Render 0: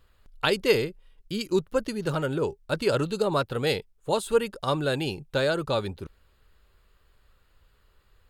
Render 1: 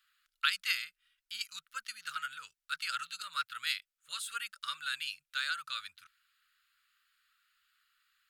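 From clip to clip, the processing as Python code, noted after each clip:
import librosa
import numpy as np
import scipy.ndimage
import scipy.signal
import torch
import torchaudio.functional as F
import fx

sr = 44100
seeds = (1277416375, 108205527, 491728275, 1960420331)

y = scipy.signal.sosfilt(scipy.signal.ellip(4, 1.0, 40, 1300.0, 'highpass', fs=sr, output='sos'), x)
y = y * librosa.db_to_amplitude(-2.5)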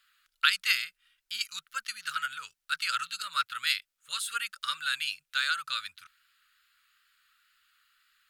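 y = fx.wow_flutter(x, sr, seeds[0], rate_hz=2.1, depth_cents=24.0)
y = y * librosa.db_to_amplitude(6.0)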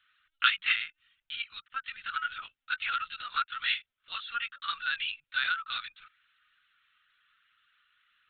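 y = fx.lpc_vocoder(x, sr, seeds[1], excitation='pitch_kept', order=16)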